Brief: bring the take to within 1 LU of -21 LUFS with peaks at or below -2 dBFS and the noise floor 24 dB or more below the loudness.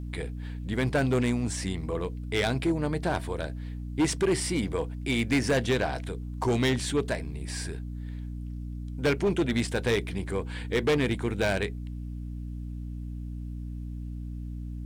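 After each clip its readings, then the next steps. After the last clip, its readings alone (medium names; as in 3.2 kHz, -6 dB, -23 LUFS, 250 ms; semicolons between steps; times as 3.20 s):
clipped samples 1.8%; clipping level -19.5 dBFS; hum 60 Hz; highest harmonic 300 Hz; hum level -34 dBFS; loudness -30.0 LUFS; peak level -19.5 dBFS; loudness target -21.0 LUFS
-> clip repair -19.5 dBFS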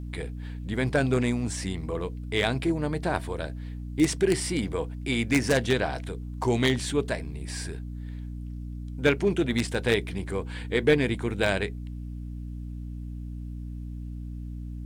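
clipped samples 0.0%; hum 60 Hz; highest harmonic 300 Hz; hum level -33 dBFS
-> de-hum 60 Hz, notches 5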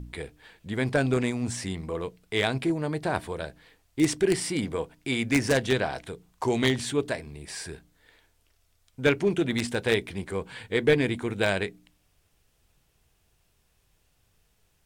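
hum not found; loudness -27.5 LUFS; peak level -9.5 dBFS; loudness target -21.0 LUFS
-> trim +6.5 dB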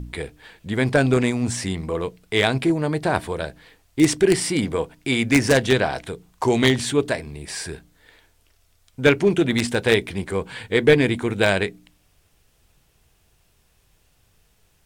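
loudness -21.0 LUFS; peak level -3.0 dBFS; noise floor -62 dBFS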